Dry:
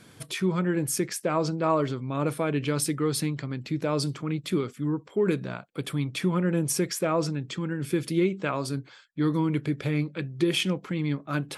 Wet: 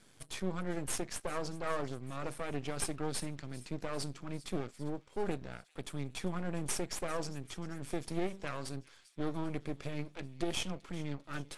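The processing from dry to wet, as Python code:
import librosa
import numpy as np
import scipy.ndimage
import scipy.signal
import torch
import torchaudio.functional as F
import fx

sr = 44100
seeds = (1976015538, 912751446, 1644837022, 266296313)

y = scipy.signal.sosfilt(scipy.signal.butter(2, 93.0, 'highpass', fs=sr, output='sos'), x)
y = fx.high_shelf(y, sr, hz=7300.0, db=9.5)
y = np.maximum(y, 0.0)
y = scipy.signal.sosfilt(scipy.signal.butter(4, 10000.0, 'lowpass', fs=sr, output='sos'), y)
y = fx.echo_wet_highpass(y, sr, ms=396, feedback_pct=66, hz=2900.0, wet_db=-17.0)
y = F.gain(torch.from_numpy(y), -7.0).numpy()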